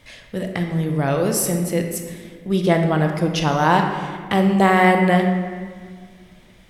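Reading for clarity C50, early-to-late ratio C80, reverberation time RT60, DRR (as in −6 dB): 5.0 dB, 6.5 dB, 1.8 s, 3.5 dB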